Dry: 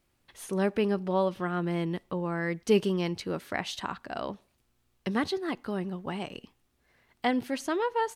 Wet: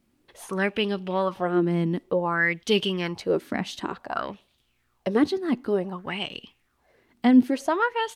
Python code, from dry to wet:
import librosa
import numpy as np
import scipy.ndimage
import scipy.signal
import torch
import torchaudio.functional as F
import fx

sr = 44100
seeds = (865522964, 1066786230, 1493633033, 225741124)

y = fx.bell_lfo(x, sr, hz=0.55, low_hz=220.0, high_hz=3500.0, db=16)